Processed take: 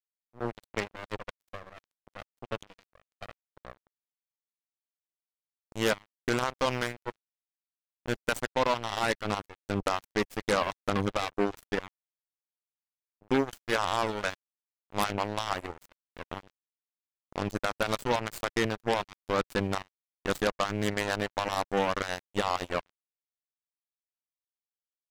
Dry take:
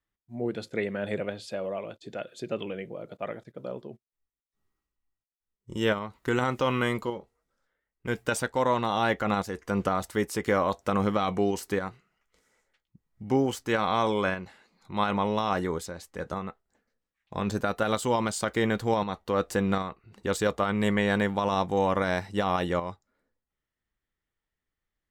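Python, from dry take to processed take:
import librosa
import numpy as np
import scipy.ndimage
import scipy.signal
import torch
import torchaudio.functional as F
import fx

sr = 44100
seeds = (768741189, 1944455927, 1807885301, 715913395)

y = fx.dereverb_blind(x, sr, rt60_s=1.6)
y = fx.cheby_harmonics(y, sr, harmonics=(5, 6, 7, 8), levels_db=(-13, -18, -11, -13), full_scale_db=-13.0)
y = np.sign(y) * np.maximum(np.abs(y) - 10.0 ** (-43.0 / 20.0), 0.0)
y = y * librosa.db_to_amplitude(-2.5)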